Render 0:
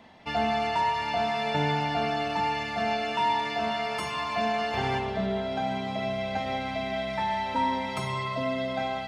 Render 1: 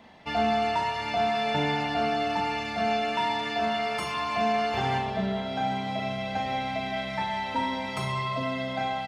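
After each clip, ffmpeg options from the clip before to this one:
ffmpeg -i in.wav -filter_complex "[0:a]asplit=2[link_01][link_02];[link_02]adelay=37,volume=-7dB[link_03];[link_01][link_03]amix=inputs=2:normalize=0" out.wav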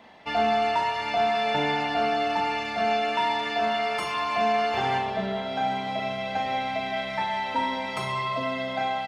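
ffmpeg -i in.wav -af "bass=frequency=250:gain=-8,treble=frequency=4000:gain=-3,volume=2.5dB" out.wav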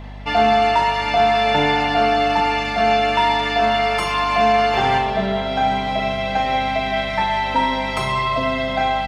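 ffmpeg -i in.wav -af "aeval=exprs='val(0)+0.00891*(sin(2*PI*50*n/s)+sin(2*PI*2*50*n/s)/2+sin(2*PI*3*50*n/s)/3+sin(2*PI*4*50*n/s)/4+sin(2*PI*5*50*n/s)/5)':channel_layout=same,volume=8dB" out.wav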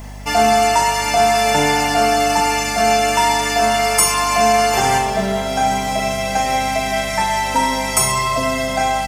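ffmpeg -i in.wav -af "aexciter=amount=11:drive=7.3:freq=5700,volume=1.5dB" out.wav

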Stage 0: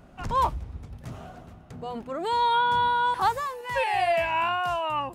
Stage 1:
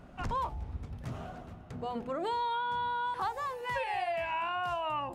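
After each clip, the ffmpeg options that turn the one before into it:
ffmpeg -i in.wav -af "highshelf=frequency=5800:gain=-7,bandreject=frequency=54.23:width_type=h:width=4,bandreject=frequency=108.46:width_type=h:width=4,bandreject=frequency=162.69:width_type=h:width=4,bandreject=frequency=216.92:width_type=h:width=4,bandreject=frequency=271.15:width_type=h:width=4,bandreject=frequency=325.38:width_type=h:width=4,bandreject=frequency=379.61:width_type=h:width=4,bandreject=frequency=433.84:width_type=h:width=4,bandreject=frequency=488.07:width_type=h:width=4,bandreject=frequency=542.3:width_type=h:width=4,bandreject=frequency=596.53:width_type=h:width=4,bandreject=frequency=650.76:width_type=h:width=4,bandreject=frequency=704.99:width_type=h:width=4,bandreject=frequency=759.22:width_type=h:width=4,bandreject=frequency=813.45:width_type=h:width=4,bandreject=frequency=867.68:width_type=h:width=4,acompressor=threshold=-31dB:ratio=6" out.wav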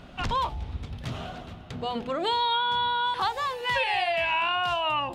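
ffmpeg -i in.wav -af "equalizer=frequency=3500:width=1.1:gain=12.5,volume=5dB" out.wav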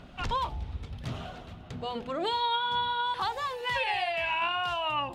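ffmpeg -i in.wav -af "aphaser=in_gain=1:out_gain=1:delay=2.3:decay=0.24:speed=1.8:type=sinusoidal,volume=-4dB" out.wav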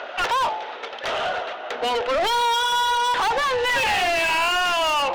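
ffmpeg -i in.wav -filter_complex "[0:a]adynamicsmooth=sensitivity=6.5:basefreq=2500,highpass=frequency=490:width=0.5412,highpass=frequency=490:width=1.3066,equalizer=frequency=760:width_type=q:width=4:gain=-4,equalizer=frequency=1100:width_type=q:width=4:gain=-7,equalizer=frequency=2300:width_type=q:width=4:gain=-3,equalizer=frequency=6100:width_type=q:width=4:gain=7,lowpass=frequency=7900:width=0.5412,lowpass=frequency=7900:width=1.3066,asplit=2[link_01][link_02];[link_02]highpass=frequency=720:poles=1,volume=30dB,asoftclip=type=tanh:threshold=-19dB[link_03];[link_01][link_03]amix=inputs=2:normalize=0,lowpass=frequency=3200:poles=1,volume=-6dB,volume=5dB" out.wav

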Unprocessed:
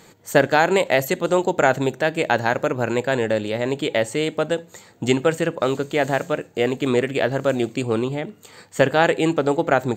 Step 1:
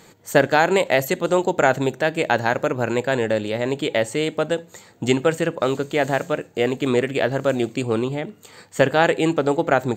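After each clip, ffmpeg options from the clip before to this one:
ffmpeg -i in.wav -af anull out.wav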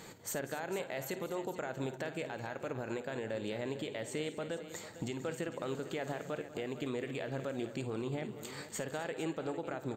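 ffmpeg -i in.wav -filter_complex "[0:a]acompressor=threshold=-32dB:ratio=2.5,alimiter=level_in=2.5dB:limit=-24dB:level=0:latency=1:release=154,volume=-2.5dB,asplit=2[link_01][link_02];[link_02]aecho=0:1:53|194|254|452:0.211|0.168|0.15|0.211[link_03];[link_01][link_03]amix=inputs=2:normalize=0,volume=-2dB" out.wav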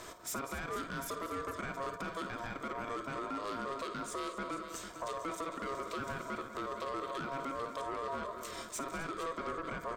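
ffmpeg -i in.wav -af "asuperstop=centerf=1900:order=8:qfactor=3,asoftclip=type=tanh:threshold=-37dB,aeval=exprs='val(0)*sin(2*PI*820*n/s)':channel_layout=same,volume=6dB" out.wav

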